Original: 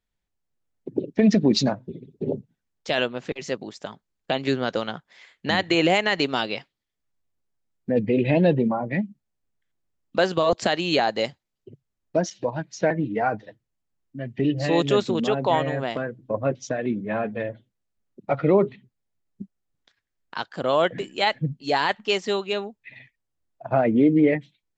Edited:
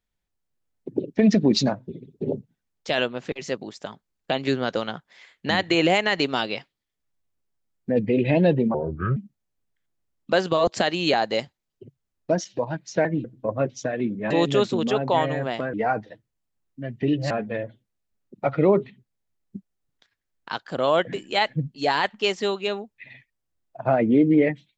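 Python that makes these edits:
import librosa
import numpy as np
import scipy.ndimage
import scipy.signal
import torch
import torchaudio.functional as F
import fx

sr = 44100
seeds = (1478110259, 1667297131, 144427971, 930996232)

y = fx.edit(x, sr, fx.speed_span(start_s=8.74, length_s=0.28, speed=0.66),
    fx.swap(start_s=13.1, length_s=1.57, other_s=16.1, other_length_s=1.06), tone=tone)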